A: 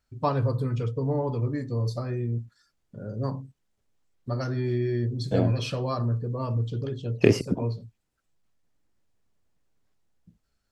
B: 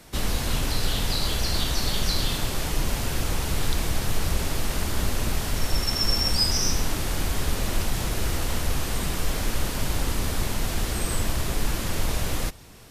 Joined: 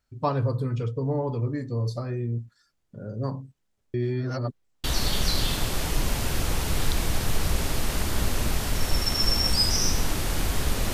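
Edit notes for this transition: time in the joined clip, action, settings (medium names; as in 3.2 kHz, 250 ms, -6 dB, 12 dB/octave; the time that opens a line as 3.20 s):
A
3.94–4.84 s: reverse
4.84 s: go over to B from 1.65 s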